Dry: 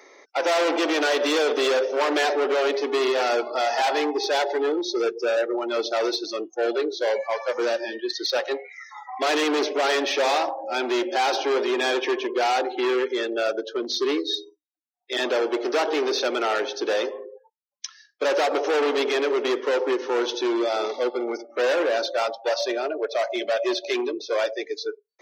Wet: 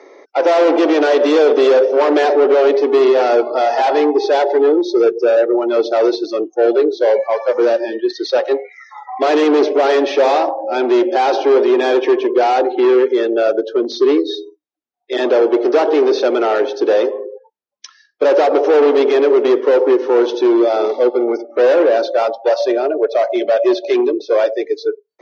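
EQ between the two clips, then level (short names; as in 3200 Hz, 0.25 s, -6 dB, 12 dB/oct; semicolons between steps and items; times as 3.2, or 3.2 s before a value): LPF 6400 Hz 24 dB/oct; bell 400 Hz +13.5 dB 3 oct; -1.5 dB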